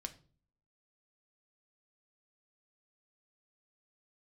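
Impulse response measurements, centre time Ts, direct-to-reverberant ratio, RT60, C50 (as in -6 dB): 5 ms, 6.5 dB, 0.40 s, 16.0 dB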